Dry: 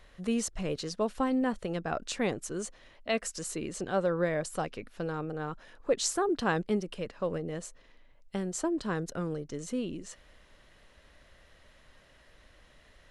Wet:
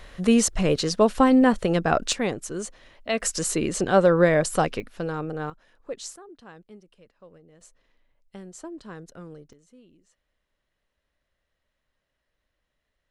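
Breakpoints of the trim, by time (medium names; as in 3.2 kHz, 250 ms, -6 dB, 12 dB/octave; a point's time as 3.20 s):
+11.5 dB
from 2.13 s +4 dB
from 3.20 s +11 dB
from 4.80 s +5 dB
from 5.50 s -7 dB
from 6.16 s -18 dB
from 7.61 s -8 dB
from 9.53 s -20 dB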